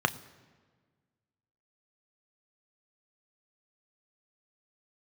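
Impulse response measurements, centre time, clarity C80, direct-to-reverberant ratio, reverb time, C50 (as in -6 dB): 5 ms, 19.5 dB, 10.0 dB, 1.5 s, 18.5 dB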